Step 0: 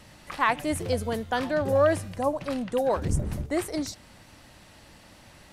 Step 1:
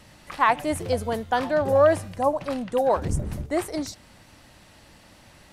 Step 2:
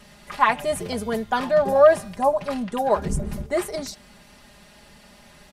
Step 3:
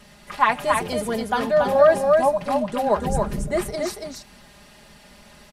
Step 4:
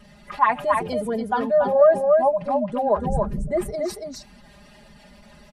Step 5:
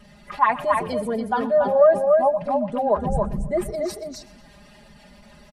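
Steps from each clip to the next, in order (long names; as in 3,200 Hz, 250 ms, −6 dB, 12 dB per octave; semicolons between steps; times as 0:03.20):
dynamic equaliser 810 Hz, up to +6 dB, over −36 dBFS, Q 1.1
comb filter 4.9 ms, depth 80%
single-tap delay 281 ms −4 dB
expanding power law on the bin magnitudes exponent 1.5
repeating echo 123 ms, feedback 54%, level −19.5 dB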